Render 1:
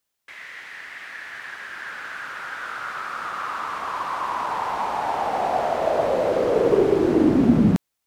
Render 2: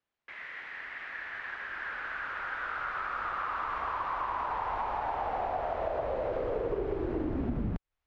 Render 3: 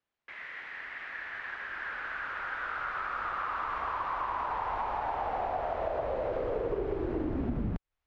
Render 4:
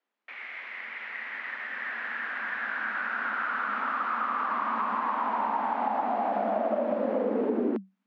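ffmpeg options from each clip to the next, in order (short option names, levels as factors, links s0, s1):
-af "lowpass=2500,asubboost=boost=11.5:cutoff=57,acompressor=threshold=0.0447:ratio=6,volume=0.75"
-af anull
-af "aresample=16000,aresample=44100,highshelf=f=4200:g=-11.5,afreqshift=190,volume=1.68"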